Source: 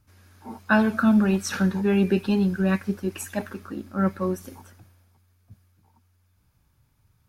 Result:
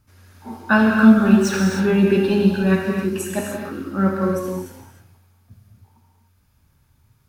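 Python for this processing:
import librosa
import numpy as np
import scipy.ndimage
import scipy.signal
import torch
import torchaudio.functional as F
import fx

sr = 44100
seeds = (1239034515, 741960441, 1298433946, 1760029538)

y = fx.median_filter(x, sr, points=3, at=(0.6, 2.0))
y = fx.rev_gated(y, sr, seeds[0], gate_ms=330, shape='flat', drr_db=-0.5)
y = y * librosa.db_to_amplitude(2.5)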